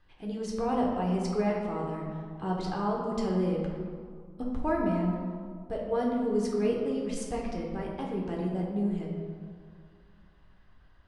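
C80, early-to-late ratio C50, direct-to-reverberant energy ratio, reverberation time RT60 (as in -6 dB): 3.5 dB, 1.5 dB, -2.5 dB, 2.1 s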